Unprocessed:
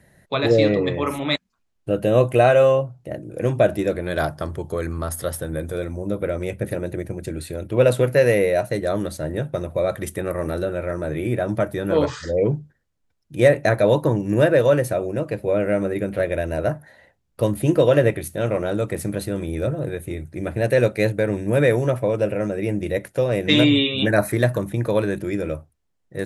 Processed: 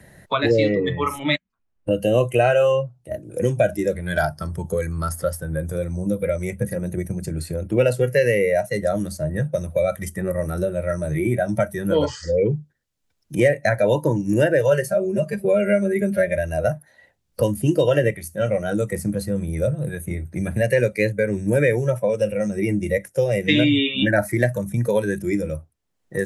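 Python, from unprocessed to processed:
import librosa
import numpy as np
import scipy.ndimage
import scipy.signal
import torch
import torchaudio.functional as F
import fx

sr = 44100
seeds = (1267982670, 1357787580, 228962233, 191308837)

y = fx.comb(x, sr, ms=5.0, depth=0.76, at=(14.71, 16.37))
y = fx.noise_reduce_blind(y, sr, reduce_db=14)
y = fx.dynamic_eq(y, sr, hz=2700.0, q=0.77, threshold_db=-38.0, ratio=4.0, max_db=4)
y = fx.band_squash(y, sr, depth_pct=70)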